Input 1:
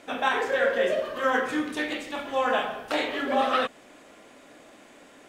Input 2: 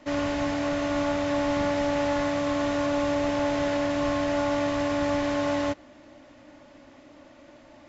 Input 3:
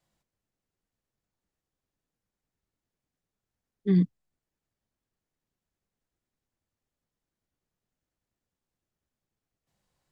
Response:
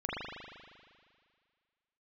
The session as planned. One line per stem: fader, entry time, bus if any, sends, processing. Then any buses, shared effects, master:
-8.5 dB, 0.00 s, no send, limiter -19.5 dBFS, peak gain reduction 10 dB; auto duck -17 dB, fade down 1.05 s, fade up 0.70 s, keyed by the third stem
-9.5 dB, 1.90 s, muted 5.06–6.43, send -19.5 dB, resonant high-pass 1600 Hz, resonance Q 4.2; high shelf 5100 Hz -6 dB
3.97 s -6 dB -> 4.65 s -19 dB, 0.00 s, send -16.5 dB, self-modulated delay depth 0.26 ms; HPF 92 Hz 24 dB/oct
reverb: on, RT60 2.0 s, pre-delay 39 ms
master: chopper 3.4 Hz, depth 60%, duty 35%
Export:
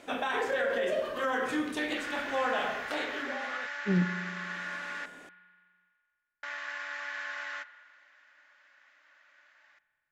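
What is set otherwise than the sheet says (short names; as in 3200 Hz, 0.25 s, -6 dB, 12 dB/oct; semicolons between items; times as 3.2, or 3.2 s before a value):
stem 1 -8.5 dB -> -2.0 dB; stem 3: missing HPF 92 Hz 24 dB/oct; master: missing chopper 3.4 Hz, depth 60%, duty 35%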